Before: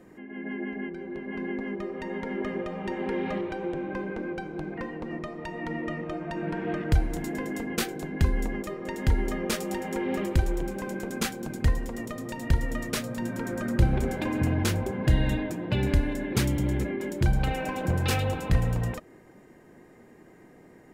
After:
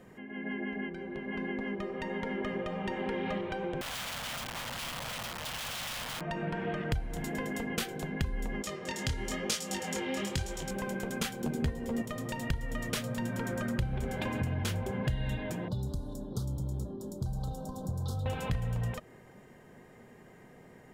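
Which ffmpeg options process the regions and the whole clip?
ffmpeg -i in.wav -filter_complex "[0:a]asettb=1/sr,asplit=3[link_01][link_02][link_03];[link_01]atrim=end=3.814[link_04];[link_02]atrim=start=3.81:end=6.21,asetpts=PTS-STARTPTS,afade=type=in:duration=0.004:curve=qsin,afade=type=out:start_time=2.396:duration=0.004:curve=qsin,aeval=exprs='(mod(50.1*val(0)+1,2)-1)/50.1':channel_layout=same,equalizer=frequency=410:width=6.9:gain=-14[link_05];[link_03]atrim=start=6.206[link_06];[link_04][link_05]acrossfade=duration=0.004:curve1=hsin:curve2=qsin[link_07];[link_07][link_06]acrossfade=duration=0.004:curve1=qsin:curve2=hsin,asettb=1/sr,asplit=3[link_08][link_09][link_10];[link_08]atrim=end=8.624[link_11];[link_09]atrim=start=8.62:end=10.71,asetpts=PTS-STARTPTS,afade=type=in:duration=0.004:curve=qsin,afade=type=out:start_time=2.086:duration=0.004:curve=qsin,highpass=57,equalizer=frequency=6000:width_type=o:width=1.9:gain=13,flanger=delay=18.5:depth=7.9:speed=1[link_12];[link_10]atrim=start=10.706[link_13];[link_11][link_12]acrossfade=duration=0.004:curve1=hsin:curve2=qsin[link_14];[link_14][link_13]acrossfade=duration=0.004:curve1=qsin:curve2=hsin,asettb=1/sr,asplit=3[link_15][link_16][link_17];[link_15]atrim=end=11.444[link_18];[link_16]atrim=start=11.44:end=12.02,asetpts=PTS-STARTPTS,afade=type=in:duration=0.004:curve=qsin,afade=type=out:start_time=0.576:duration=0.004:curve=qsin,equalizer=frequency=310:width=0.83:gain=10.5,asplit=2[link_19][link_20];[link_20]adelay=13,volume=-5dB[link_21];[link_19][link_21]amix=inputs=2:normalize=0,atrim=end_sample=25578[link_22];[link_17]atrim=start=12.016[link_23];[link_18][link_22]acrossfade=duration=0.004:curve1=hsin:curve2=qsin[link_24];[link_24][link_23]acrossfade=duration=0.004:curve1=qsin:curve2=hsin,asettb=1/sr,asplit=3[link_25][link_26][link_27];[link_25]atrim=end=15.684[link_28];[link_26]atrim=start=15.68:end=18.26,asetpts=PTS-STARTPTS,afade=type=in:duration=0.004:curve=qsin,afade=type=out:start_time=2.576:duration=0.004:curve=qsin,asuperstop=centerf=2200:order=8:qfactor=0.89,acrossover=split=100|330|4200[link_29][link_30][link_31][link_32];[link_29]acompressor=threshold=-37dB:ratio=3[link_33];[link_30]acompressor=threshold=-39dB:ratio=3[link_34];[link_31]acompressor=threshold=-49dB:ratio=3[link_35];[link_32]acompressor=threshold=-53dB:ratio=3[link_36];[link_33][link_34][link_35][link_36]amix=inputs=4:normalize=0[link_37];[link_27]atrim=start=18.256[link_38];[link_28][link_37]acrossfade=duration=0.004:curve1=hsin:curve2=qsin[link_39];[link_39][link_38]acrossfade=duration=0.004:curve1=qsin:curve2=hsin,equalizer=frequency=125:width_type=o:width=0.33:gain=4,equalizer=frequency=315:width_type=o:width=0.33:gain=-11,equalizer=frequency=3150:width_type=o:width=0.33:gain=5,acompressor=threshold=-30dB:ratio=4" out.wav

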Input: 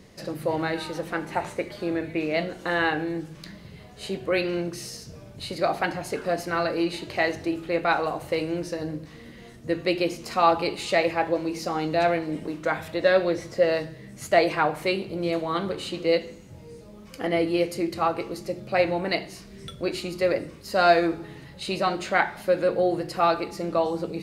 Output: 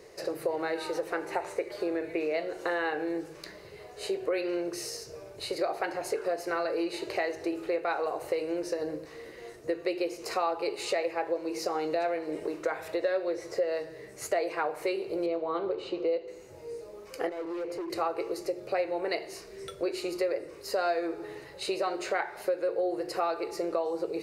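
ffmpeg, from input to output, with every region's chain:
ffmpeg -i in.wav -filter_complex "[0:a]asettb=1/sr,asplit=3[link_01][link_02][link_03];[link_01]atrim=end=15.264[link_04];[link_02]atrim=start=15.26:end=16.28,asetpts=PTS-STARTPTS,afade=type=in:duration=0.004:curve=qsin,afade=type=out:start_time=1.016:duration=0.004:curve=qsin,lowpass=2900,equalizer=frequency=1800:width_type=o:width=0.65:gain=-9[link_05];[link_03]atrim=start=16.276[link_06];[link_04][link_05]acrossfade=duration=0.004:curve1=hsin:curve2=qsin[link_07];[link_07][link_06]acrossfade=duration=0.004:curve1=qsin:curve2=hsin,asettb=1/sr,asplit=3[link_08][link_09][link_10];[link_08]atrim=end=17.294[link_11];[link_09]atrim=start=17.29:end=17.9,asetpts=PTS-STARTPTS,afade=type=in:duration=0.004:curve=qsin,afade=type=out:start_time=0.606:duration=0.004:curve=qsin,lowpass=frequency=1500:poles=1,acompressor=threshold=-30dB:ratio=4:attack=3.2:release=140:knee=1:detection=peak,asoftclip=type=hard:threshold=-34.5dB[link_12];[link_10]atrim=start=17.896[link_13];[link_11][link_12]acrossfade=duration=0.004:curve1=hsin:curve2=qsin[link_14];[link_14][link_13]acrossfade=duration=0.004:curve1=qsin:curve2=hsin,lowshelf=frequency=300:width_type=q:width=3:gain=-10,acompressor=threshold=-28dB:ratio=4,equalizer=frequency=3300:width_type=o:width=0.27:gain=-8.5" out.wav

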